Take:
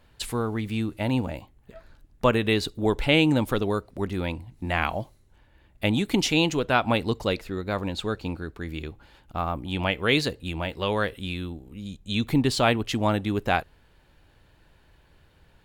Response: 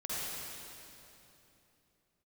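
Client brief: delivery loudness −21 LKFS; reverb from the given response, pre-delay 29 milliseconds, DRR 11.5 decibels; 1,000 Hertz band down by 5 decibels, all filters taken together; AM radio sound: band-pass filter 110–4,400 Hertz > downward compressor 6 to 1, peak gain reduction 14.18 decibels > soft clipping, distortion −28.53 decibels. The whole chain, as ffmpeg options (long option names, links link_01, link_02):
-filter_complex "[0:a]equalizer=frequency=1000:width_type=o:gain=-7,asplit=2[link_01][link_02];[1:a]atrim=start_sample=2205,adelay=29[link_03];[link_02][link_03]afir=irnorm=-1:irlink=0,volume=-16dB[link_04];[link_01][link_04]amix=inputs=2:normalize=0,highpass=110,lowpass=4400,acompressor=threshold=-31dB:ratio=6,asoftclip=threshold=-19dB,volume=15.5dB"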